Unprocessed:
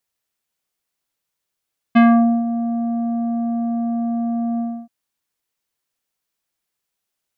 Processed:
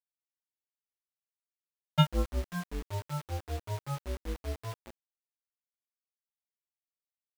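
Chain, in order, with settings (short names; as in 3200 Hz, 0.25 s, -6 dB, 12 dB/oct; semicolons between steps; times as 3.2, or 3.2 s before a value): ring modulator 140 Hz; low shelf 110 Hz +2 dB; metallic resonator 100 Hz, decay 0.44 s, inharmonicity 0.008; feedback echo 0.218 s, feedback 25%, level -11 dB; grains 0.155 s, grains 5.2/s, spray 11 ms, pitch spread up and down by 12 st; requantised 8-bit, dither none; gain +4.5 dB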